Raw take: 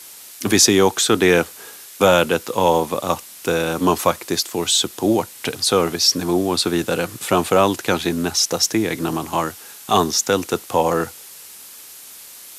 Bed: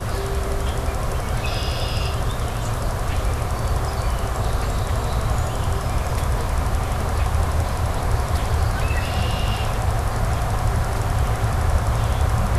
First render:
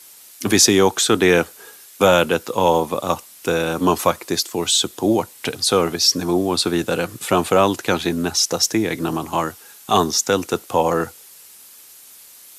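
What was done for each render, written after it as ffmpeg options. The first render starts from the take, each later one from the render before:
-af "afftdn=nr=6:nf=-40"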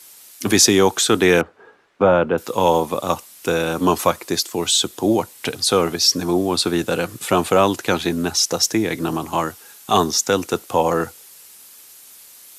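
-filter_complex "[0:a]asettb=1/sr,asplit=3[a][b][c];[a]atrim=end=1.414[d];[b]atrim=start=1.41:end=2.38,asetpts=PTS-STARTPTS,afade=t=in:d=0.004:c=qsin,afade=t=out:st=0.966:d=0.004:c=qsin,lowpass=1.4k[e];[c]atrim=start=2.376[f];[d][e]acrossfade=d=0.004:c1=hsin:c2=qsin[g];[g][f]acrossfade=d=0.004:c1=qsin:c2=hsin"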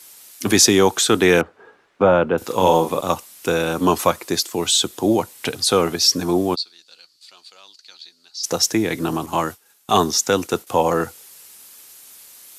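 -filter_complex "[0:a]asettb=1/sr,asplit=3[a][b][c];[a]atrim=end=2.374[d];[b]atrim=start=2.37:end=3.01,asetpts=PTS-STARTPTS,afade=t=in:d=0.004:c=qsin,afade=t=out:st=0.636:d=0.004:c=qsin,asplit=2[e][f];[f]adelay=43,volume=-6.5dB[g];[e][g]amix=inputs=2:normalize=0,atrim=end_sample=28224[h];[c]atrim=start=3.006[i];[d][h]acrossfade=d=0.004:c1=hsin:c2=qsin[j];[j][i]acrossfade=d=0.004:c1=qsin:c2=hsin,asplit=3[k][l][m];[k]afade=t=out:st=6.54:d=0.02[n];[l]bandpass=f=4.5k:t=q:w=11,afade=t=in:st=6.54:d=0.02,afade=t=out:st=8.43:d=0.02[o];[m]afade=t=in:st=8.43:d=0.02[p];[n][o][p]amix=inputs=3:normalize=0,asettb=1/sr,asplit=3[q][r][s];[q]atrim=end=9.264[t];[r]atrim=start=9.26:end=10.67,asetpts=PTS-STARTPTS,afade=t=in:d=0.004:c=qsin,afade=t=out:st=1.406:d=0.004:c=qsin,agate=range=-33dB:threshold=-35dB:ratio=3:release=100:detection=peak[u];[s]atrim=start=10.666[v];[t][u]acrossfade=d=0.004:c1=hsin:c2=qsin[w];[w][v]acrossfade=d=0.004:c1=qsin:c2=hsin"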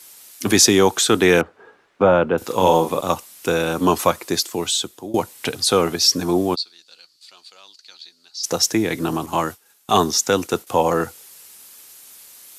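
-filter_complex "[0:a]asplit=2[a][b];[a]atrim=end=5.14,asetpts=PTS-STARTPTS,afade=t=out:st=4.48:d=0.66:silence=0.1[c];[b]atrim=start=5.14,asetpts=PTS-STARTPTS,afade=t=in:d=0.004:c=hsin:silence=0.1[d];[c][d]concat=n=2:v=0:a=1"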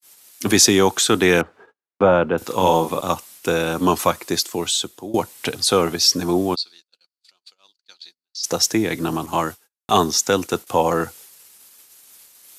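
-af "adynamicequalizer=threshold=0.0355:dfrequency=470:dqfactor=1.5:tfrequency=470:tqfactor=1.5:attack=5:release=100:ratio=0.375:range=1.5:mode=cutabove:tftype=bell,agate=range=-39dB:threshold=-43dB:ratio=16:detection=peak"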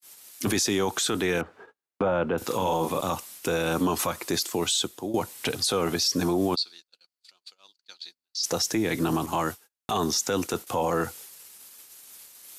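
-af "acompressor=threshold=-16dB:ratio=6,alimiter=limit=-16.5dB:level=0:latency=1:release=11"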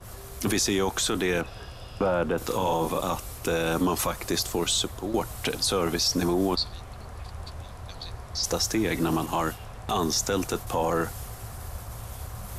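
-filter_complex "[1:a]volume=-18.5dB[a];[0:a][a]amix=inputs=2:normalize=0"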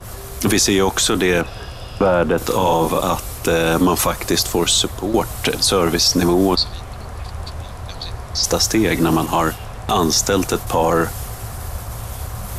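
-af "volume=9.5dB"

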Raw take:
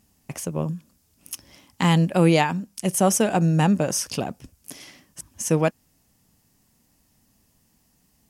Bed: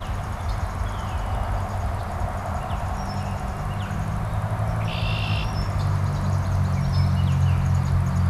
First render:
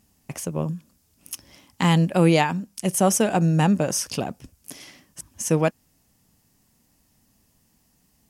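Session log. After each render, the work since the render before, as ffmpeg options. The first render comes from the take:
-af anull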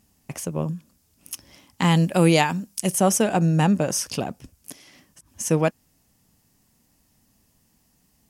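-filter_complex "[0:a]asettb=1/sr,asplit=3[a][b][c];[a]atrim=end=1.954[d];[b]atrim=start=1.95:end=2.93,asetpts=PTS-STARTPTS,afade=t=in:d=0.004:c=qsin,afade=t=out:st=0.976:d=0.004:c=qsin,highshelf=f=4.3k:g=8[e];[c]atrim=start=2.926[f];[d][e]acrossfade=d=0.004:c1=hsin:c2=qsin[g];[g][f]acrossfade=d=0.004:c1=qsin:c2=hsin,asettb=1/sr,asplit=3[h][i][j];[h]atrim=end=4.724[k];[i]atrim=start=4.72:end=5.34,asetpts=PTS-STARTPTS,afade=t=in:d=0.004:c=qsin,afade=t=out:st=0.616:d=0.004:c=qsin,acompressor=threshold=-46dB:ratio=10:attack=3.2:release=140:knee=1:detection=peak[l];[j]atrim=start=5.336[m];[k][l]acrossfade=d=0.004:c1=hsin:c2=qsin[n];[n][m]acrossfade=d=0.004:c1=qsin:c2=hsin"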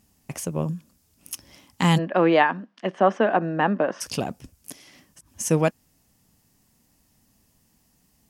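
-filter_complex "[0:a]asplit=3[a][b][c];[a]afade=t=out:st=1.97:d=0.02[d];[b]highpass=f=230:w=0.5412,highpass=f=230:w=1.3066,equalizer=f=650:t=q:w=4:g=4,equalizer=f=1.1k:t=q:w=4:g=6,equalizer=f=1.7k:t=q:w=4:g=7,equalizer=f=2.4k:t=q:w=4:g=-6,lowpass=f=2.9k:w=0.5412,lowpass=f=2.9k:w=1.3066,afade=t=in:st=1.97:d=0.02,afade=t=out:st=4:d=0.02[e];[c]afade=t=in:st=4:d=0.02[f];[d][e][f]amix=inputs=3:normalize=0"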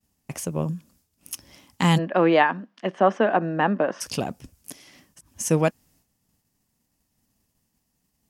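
-af "agate=range=-33dB:threshold=-56dB:ratio=3:detection=peak"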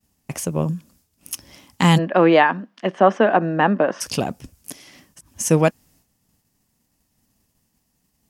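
-af "volume=4.5dB,alimiter=limit=-2dB:level=0:latency=1"

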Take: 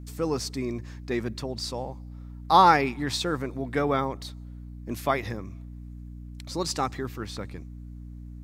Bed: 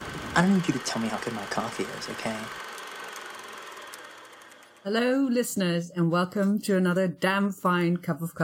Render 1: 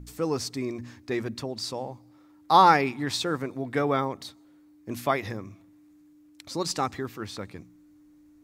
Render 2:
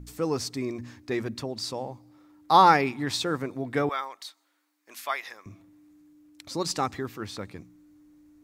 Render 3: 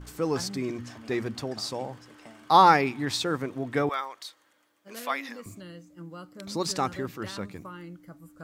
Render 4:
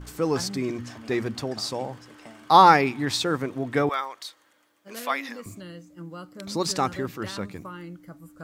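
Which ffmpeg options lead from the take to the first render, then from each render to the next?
-af "bandreject=f=60:t=h:w=4,bandreject=f=120:t=h:w=4,bandreject=f=180:t=h:w=4,bandreject=f=240:t=h:w=4"
-filter_complex "[0:a]asettb=1/sr,asplit=3[a][b][c];[a]atrim=end=3.894[d];[b]atrim=start=3.89:end=5.46,asetpts=PTS-STARTPTS,afade=t=in:d=0.004:c=qsin,afade=t=out:st=1.566:d=0.004:c=qsin,highpass=1.1k[e];[c]atrim=start=5.456[f];[d][e]acrossfade=d=0.004:c1=hsin:c2=qsin[g];[g][f]acrossfade=d=0.004:c1=qsin:c2=hsin"
-filter_complex "[1:a]volume=-18.5dB[a];[0:a][a]amix=inputs=2:normalize=0"
-af "volume=3dB"

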